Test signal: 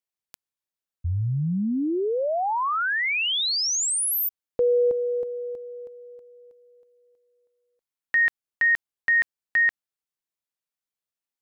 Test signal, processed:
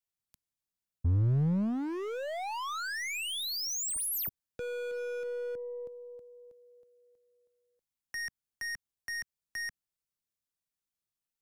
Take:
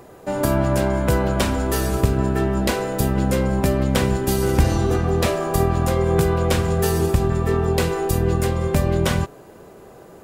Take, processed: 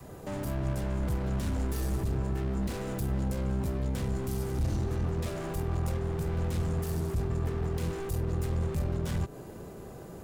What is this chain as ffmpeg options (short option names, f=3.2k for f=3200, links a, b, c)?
-filter_complex "[0:a]alimiter=limit=-11.5dB:level=0:latency=1:release=54,acompressor=threshold=-21dB:ratio=10:attack=1.7:release=275:knee=1:detection=rms,adynamicequalizer=threshold=0.0126:dfrequency=370:dqfactor=1.4:tfrequency=370:tqfactor=1.4:attack=5:release=100:ratio=0.375:range=1.5:mode=boostabove:tftype=bell,volume=29.5dB,asoftclip=hard,volume=-29.5dB,bass=f=250:g=10,treble=f=4k:g=4,aeval=exprs='0.119*(cos(1*acos(clip(val(0)/0.119,-1,1)))-cos(1*PI/2))+0.00944*(cos(2*acos(clip(val(0)/0.119,-1,1)))-cos(2*PI/2))+0.00266*(cos(8*acos(clip(val(0)/0.119,-1,1)))-cos(8*PI/2))':c=same,acrossover=split=210[a][b];[b]acompressor=threshold=-27dB:ratio=6:attack=0.44:release=273:knee=2.83:detection=peak[c];[a][c]amix=inputs=2:normalize=0,volume=-4.5dB"